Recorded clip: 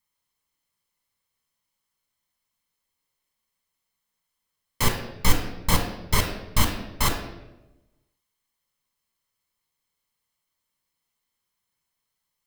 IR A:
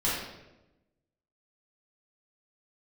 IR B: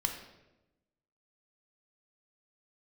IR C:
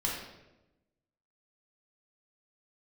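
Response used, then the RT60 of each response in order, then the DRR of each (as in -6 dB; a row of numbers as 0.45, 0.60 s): B; 1.0, 1.0, 1.0 s; -8.5, 3.5, -3.5 dB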